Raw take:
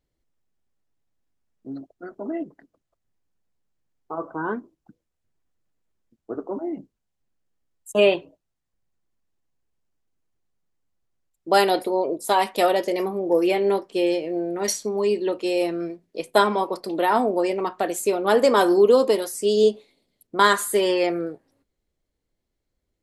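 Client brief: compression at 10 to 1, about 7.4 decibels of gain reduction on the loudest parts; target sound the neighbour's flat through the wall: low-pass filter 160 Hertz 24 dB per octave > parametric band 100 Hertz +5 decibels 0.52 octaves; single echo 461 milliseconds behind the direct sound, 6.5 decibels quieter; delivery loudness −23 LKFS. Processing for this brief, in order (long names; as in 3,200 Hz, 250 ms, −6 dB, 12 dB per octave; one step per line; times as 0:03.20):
downward compressor 10 to 1, threshold −19 dBFS
low-pass filter 160 Hz 24 dB per octave
parametric band 100 Hz +5 dB 0.52 octaves
single-tap delay 461 ms −6.5 dB
level +26 dB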